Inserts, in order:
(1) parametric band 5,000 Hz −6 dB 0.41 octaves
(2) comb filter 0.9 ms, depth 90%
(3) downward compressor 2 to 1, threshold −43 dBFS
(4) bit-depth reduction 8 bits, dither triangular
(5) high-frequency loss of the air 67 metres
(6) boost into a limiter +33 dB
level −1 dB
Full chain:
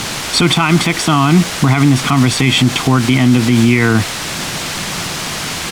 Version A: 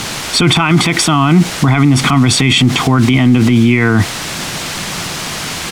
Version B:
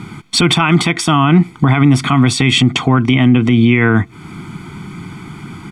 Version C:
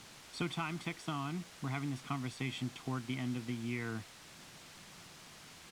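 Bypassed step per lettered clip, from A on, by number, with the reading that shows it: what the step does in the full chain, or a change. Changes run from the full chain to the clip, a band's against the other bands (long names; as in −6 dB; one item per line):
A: 3, average gain reduction 10.0 dB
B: 4, 8 kHz band −5.0 dB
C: 6, change in crest factor +7.0 dB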